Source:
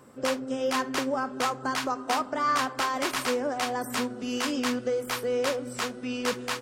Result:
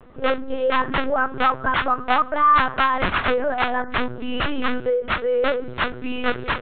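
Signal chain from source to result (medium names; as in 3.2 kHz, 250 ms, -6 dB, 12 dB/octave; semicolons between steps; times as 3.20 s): LPC vocoder at 8 kHz pitch kept; dynamic bell 1.5 kHz, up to +6 dB, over -42 dBFS, Q 1.5; trim +6.5 dB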